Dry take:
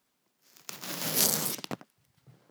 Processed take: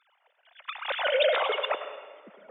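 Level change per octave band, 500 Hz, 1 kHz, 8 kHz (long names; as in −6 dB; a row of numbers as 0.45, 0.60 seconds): +14.5 dB, +10.5 dB, below −40 dB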